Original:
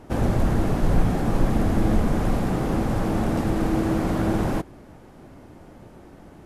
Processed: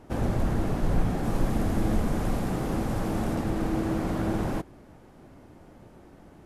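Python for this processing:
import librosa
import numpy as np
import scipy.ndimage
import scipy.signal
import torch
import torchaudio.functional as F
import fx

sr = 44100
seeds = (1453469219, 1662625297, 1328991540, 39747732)

y = fx.high_shelf(x, sr, hz=5000.0, db=5.0, at=(1.23, 3.35))
y = y * 10.0 ** (-5.0 / 20.0)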